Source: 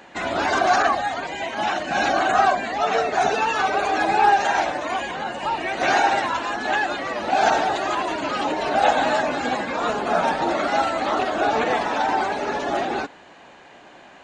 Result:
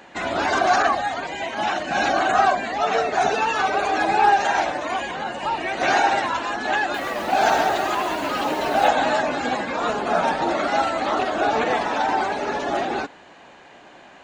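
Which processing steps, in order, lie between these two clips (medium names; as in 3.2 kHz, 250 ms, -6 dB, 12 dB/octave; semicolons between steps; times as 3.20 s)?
6.81–8.88 s: bit-crushed delay 130 ms, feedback 35%, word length 6-bit, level -6.5 dB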